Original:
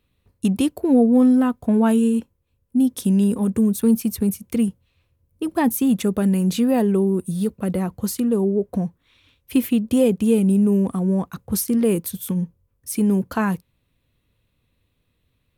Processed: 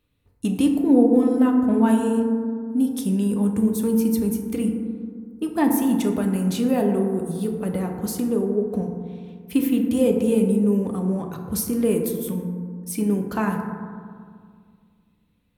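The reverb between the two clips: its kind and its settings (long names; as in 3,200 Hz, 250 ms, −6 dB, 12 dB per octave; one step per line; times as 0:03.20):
feedback delay network reverb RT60 2 s, low-frequency decay 1.25×, high-frequency decay 0.3×, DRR 2 dB
level −3.5 dB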